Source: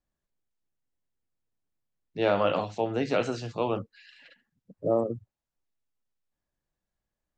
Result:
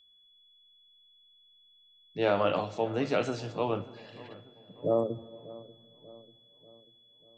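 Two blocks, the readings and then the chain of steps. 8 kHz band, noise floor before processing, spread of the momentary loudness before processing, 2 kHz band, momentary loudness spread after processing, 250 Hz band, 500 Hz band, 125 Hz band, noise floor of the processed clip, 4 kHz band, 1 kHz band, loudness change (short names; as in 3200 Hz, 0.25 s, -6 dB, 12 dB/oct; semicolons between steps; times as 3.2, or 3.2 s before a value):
n/a, under -85 dBFS, 11 LU, -1.5 dB, 20 LU, -2.0 dB, -1.5 dB, -1.5 dB, -62 dBFS, -1.0 dB, -2.0 dB, -2.0 dB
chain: darkening echo 0.59 s, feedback 52%, low-pass 1800 Hz, level -18.5 dB; whine 3400 Hz -58 dBFS; shoebox room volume 3500 m³, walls mixed, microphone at 0.37 m; gain -2 dB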